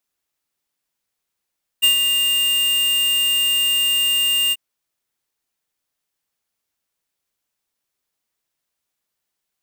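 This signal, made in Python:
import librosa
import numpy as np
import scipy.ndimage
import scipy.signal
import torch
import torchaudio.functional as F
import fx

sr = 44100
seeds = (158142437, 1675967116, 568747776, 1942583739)

y = fx.adsr_tone(sr, wave='square', hz=2810.0, attack_ms=21.0, decay_ms=112.0, sustain_db=-5.5, held_s=2.7, release_ms=38.0, level_db=-12.5)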